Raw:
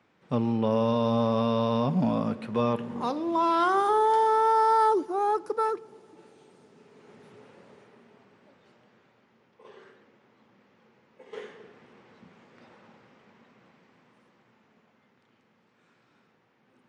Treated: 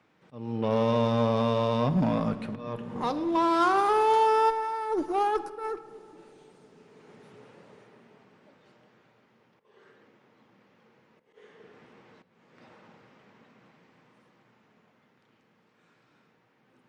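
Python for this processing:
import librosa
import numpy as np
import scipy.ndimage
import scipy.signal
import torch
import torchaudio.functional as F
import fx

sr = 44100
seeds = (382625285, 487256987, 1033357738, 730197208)

y = fx.over_compress(x, sr, threshold_db=-25.0, ratio=-0.5, at=(4.49, 5.76), fade=0.02)
y = fx.auto_swell(y, sr, attack_ms=431.0)
y = fx.cheby_harmonics(y, sr, harmonics=(6,), levels_db=(-24,), full_scale_db=-15.5)
y = fx.room_shoebox(y, sr, seeds[0], volume_m3=3300.0, walls='mixed', distance_m=0.51)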